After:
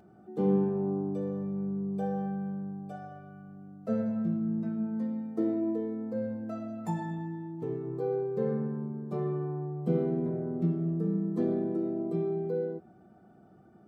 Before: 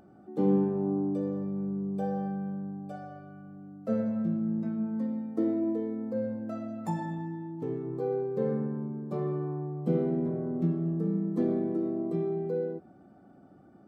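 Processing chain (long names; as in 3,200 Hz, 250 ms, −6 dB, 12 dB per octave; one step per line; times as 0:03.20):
notch comb filter 280 Hz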